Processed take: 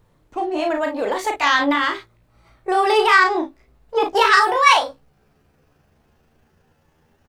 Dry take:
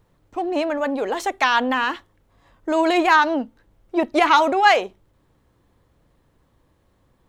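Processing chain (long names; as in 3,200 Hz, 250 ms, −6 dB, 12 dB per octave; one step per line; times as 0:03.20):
pitch glide at a constant tempo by +8.5 semitones starting unshifted
ambience of single reflections 35 ms −5.5 dB, 53 ms −11 dB
level +1.5 dB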